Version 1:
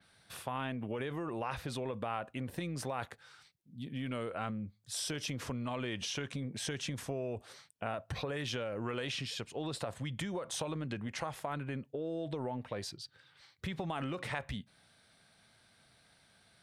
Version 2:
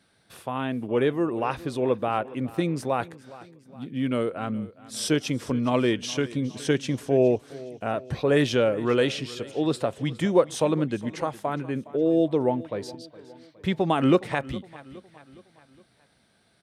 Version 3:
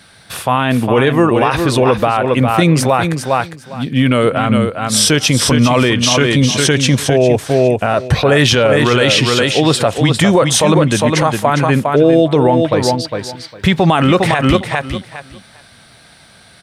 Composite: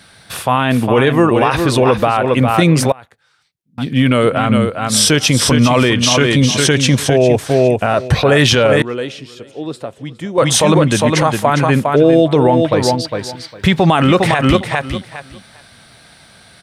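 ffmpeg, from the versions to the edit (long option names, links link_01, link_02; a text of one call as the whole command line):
ffmpeg -i take0.wav -i take1.wav -i take2.wav -filter_complex "[2:a]asplit=3[link_01][link_02][link_03];[link_01]atrim=end=2.922[link_04];[0:a]atrim=start=2.918:end=3.782[link_05];[link_02]atrim=start=3.778:end=8.822[link_06];[1:a]atrim=start=8.818:end=10.382[link_07];[link_03]atrim=start=10.378[link_08];[link_04][link_05]acrossfade=duration=0.004:curve1=hsin:curve2=hsin[link_09];[link_09][link_06]acrossfade=duration=0.004:curve1=hsin:curve2=hsin[link_10];[link_10][link_07]acrossfade=duration=0.004:curve1=hsin:curve2=hsin[link_11];[link_11][link_08]acrossfade=duration=0.004:curve1=hsin:curve2=hsin" out.wav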